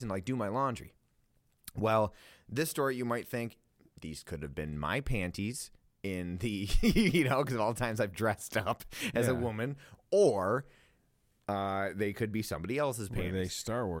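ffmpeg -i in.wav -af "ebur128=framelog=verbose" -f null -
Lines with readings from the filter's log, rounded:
Integrated loudness:
  I:         -33.1 LUFS
  Threshold: -43.6 LUFS
Loudness range:
  LRA:         5.3 LU
  Threshold: -53.6 LUFS
  LRA low:   -36.9 LUFS
  LRA high:  -31.6 LUFS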